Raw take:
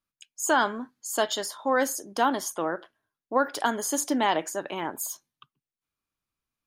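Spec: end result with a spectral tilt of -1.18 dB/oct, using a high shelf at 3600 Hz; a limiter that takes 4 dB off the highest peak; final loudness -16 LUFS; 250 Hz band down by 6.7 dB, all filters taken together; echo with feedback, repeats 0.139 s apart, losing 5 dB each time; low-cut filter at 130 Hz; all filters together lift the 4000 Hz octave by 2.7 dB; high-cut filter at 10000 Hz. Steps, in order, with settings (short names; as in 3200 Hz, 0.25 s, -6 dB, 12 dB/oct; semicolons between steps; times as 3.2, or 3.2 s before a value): HPF 130 Hz; LPF 10000 Hz; bell 250 Hz -7.5 dB; high shelf 3600 Hz -8 dB; bell 4000 Hz +9 dB; limiter -15.5 dBFS; feedback echo 0.139 s, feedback 56%, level -5 dB; gain +12.5 dB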